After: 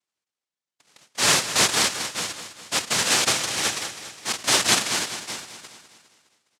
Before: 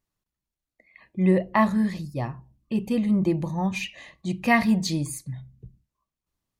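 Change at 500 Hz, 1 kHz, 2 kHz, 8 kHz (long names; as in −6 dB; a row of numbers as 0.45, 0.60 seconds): −3.5, +0.5, +5.5, +19.5 decibels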